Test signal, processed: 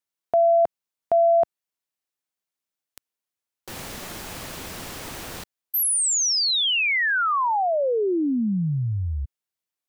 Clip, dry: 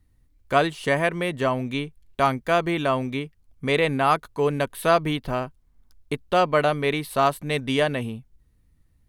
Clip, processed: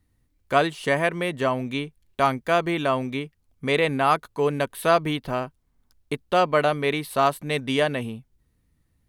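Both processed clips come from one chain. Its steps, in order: bass shelf 62 Hz -11 dB

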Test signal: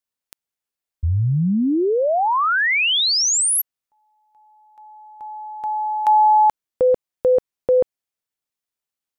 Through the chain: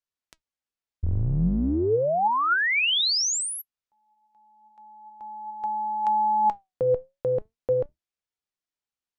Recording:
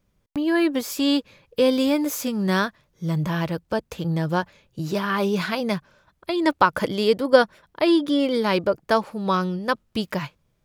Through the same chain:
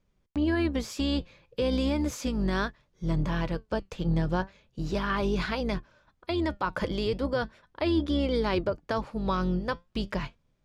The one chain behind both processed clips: octave divider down 2 oct, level -2 dB; low-pass 6.8 kHz 12 dB/octave; peak limiter -13.5 dBFS; flange 0.36 Hz, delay 2.1 ms, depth 3.9 ms, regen +83%

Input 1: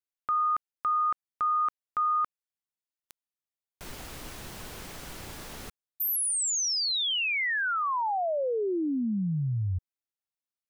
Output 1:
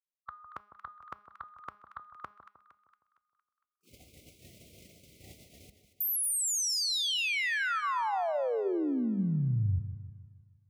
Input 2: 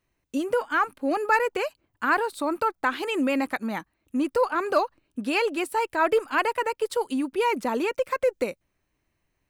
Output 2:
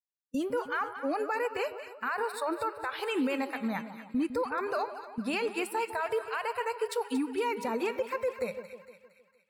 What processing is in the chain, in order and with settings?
high-pass 67 Hz 24 dB/octave; gate -40 dBFS, range -40 dB; spectral noise reduction 28 dB; bass shelf 90 Hz +9 dB; de-hum 207.4 Hz, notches 29; in parallel at -1 dB: compression, threshold -35 dBFS; on the sum: peak limiter -17.5 dBFS; feedback comb 200 Hz, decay 1.4 s, mix 30%; on a send: two-band feedback delay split 1.2 kHz, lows 155 ms, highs 230 ms, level -11 dB; on the sum: trim -2.5 dB

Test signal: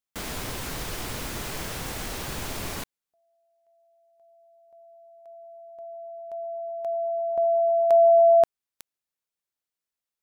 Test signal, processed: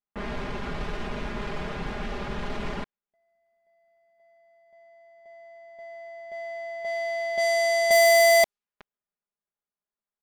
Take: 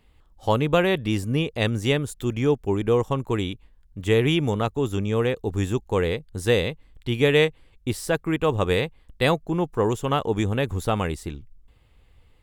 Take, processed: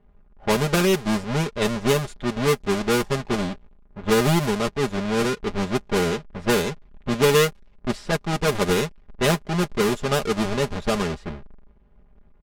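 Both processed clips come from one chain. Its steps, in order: square wave that keeps the level; comb 4.9 ms, depth 71%; level-controlled noise filter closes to 1.5 kHz, open at -11 dBFS; trim -5 dB

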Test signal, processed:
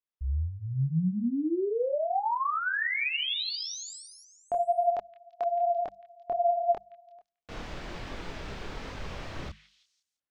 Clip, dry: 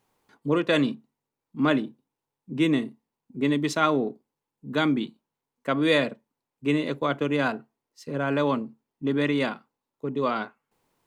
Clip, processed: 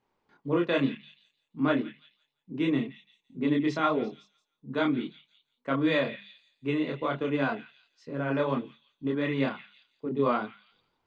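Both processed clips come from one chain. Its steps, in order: hum notches 50/100/150/200 Hz; chorus voices 4, 1.1 Hz, delay 26 ms, depth 3.8 ms; distance through air 170 m; on a send: repeats whose band climbs or falls 170 ms, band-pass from 2.6 kHz, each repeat 0.7 oct, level -11.5 dB

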